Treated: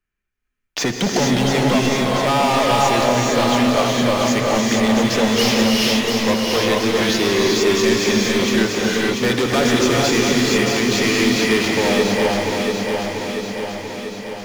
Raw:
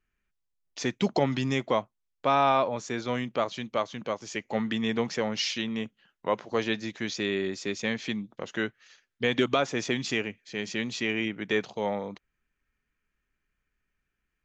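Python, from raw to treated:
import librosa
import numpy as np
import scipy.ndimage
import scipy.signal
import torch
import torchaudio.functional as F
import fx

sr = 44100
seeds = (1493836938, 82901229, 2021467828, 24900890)

y = fx.leveller(x, sr, passes=5)
y = fx.echo_feedback(y, sr, ms=689, feedback_pct=50, wet_db=-6)
y = fx.rev_gated(y, sr, seeds[0], gate_ms=490, shape='rising', drr_db=-2.5)
y = fx.band_squash(y, sr, depth_pct=40)
y = y * librosa.db_to_amplitude(-4.5)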